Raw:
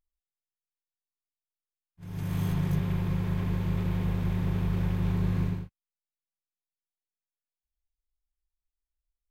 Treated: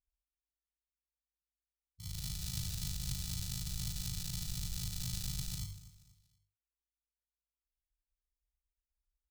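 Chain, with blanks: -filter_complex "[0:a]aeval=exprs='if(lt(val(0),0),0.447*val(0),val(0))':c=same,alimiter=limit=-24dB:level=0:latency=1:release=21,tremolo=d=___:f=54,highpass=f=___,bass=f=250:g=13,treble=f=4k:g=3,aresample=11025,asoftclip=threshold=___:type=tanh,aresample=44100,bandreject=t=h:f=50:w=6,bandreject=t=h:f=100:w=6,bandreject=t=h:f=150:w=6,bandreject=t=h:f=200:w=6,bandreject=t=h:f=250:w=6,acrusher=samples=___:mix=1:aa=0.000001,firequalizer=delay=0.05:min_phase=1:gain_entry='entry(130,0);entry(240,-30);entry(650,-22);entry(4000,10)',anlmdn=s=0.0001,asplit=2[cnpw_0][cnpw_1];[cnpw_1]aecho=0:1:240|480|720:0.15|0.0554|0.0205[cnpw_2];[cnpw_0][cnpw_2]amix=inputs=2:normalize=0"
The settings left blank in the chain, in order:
0.824, 41, -29.5dB, 41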